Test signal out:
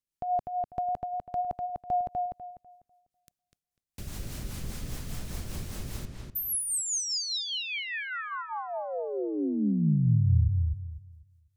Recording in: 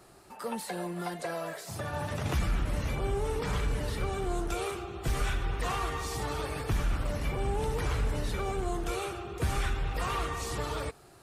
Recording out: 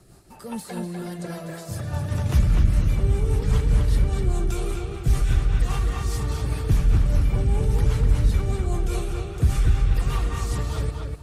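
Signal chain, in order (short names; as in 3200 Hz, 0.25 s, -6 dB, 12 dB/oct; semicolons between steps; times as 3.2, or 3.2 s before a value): rotary speaker horn 5 Hz; tone controls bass +12 dB, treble +6 dB; darkening echo 0.248 s, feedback 26%, low-pass 3600 Hz, level -3 dB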